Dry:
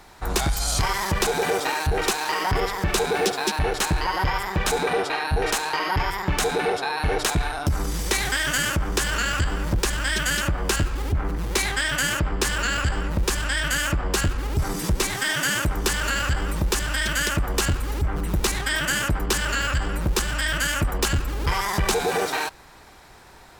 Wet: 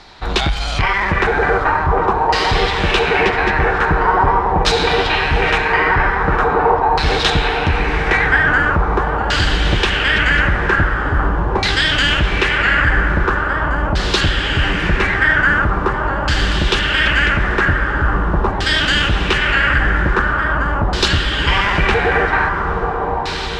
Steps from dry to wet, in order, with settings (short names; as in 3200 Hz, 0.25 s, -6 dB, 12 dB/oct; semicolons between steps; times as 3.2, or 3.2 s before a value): diffused feedback echo 0.889 s, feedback 65%, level -5 dB; LFO low-pass saw down 0.43 Hz 880–4500 Hz; gain +5.5 dB